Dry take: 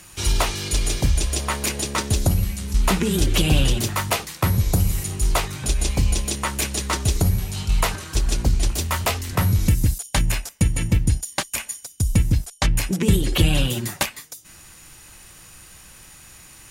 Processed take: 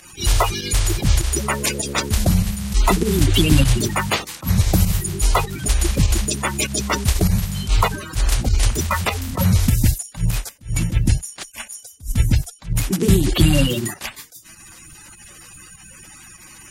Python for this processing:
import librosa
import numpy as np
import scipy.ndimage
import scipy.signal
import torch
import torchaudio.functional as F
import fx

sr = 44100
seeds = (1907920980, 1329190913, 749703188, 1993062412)

y = fx.spec_quant(x, sr, step_db=30)
y = fx.volume_shaper(y, sr, bpm=99, per_beat=1, depth_db=-9, release_ms=78.0, shape='fast start')
y = fx.attack_slew(y, sr, db_per_s=250.0)
y = y * librosa.db_to_amplitude(4.0)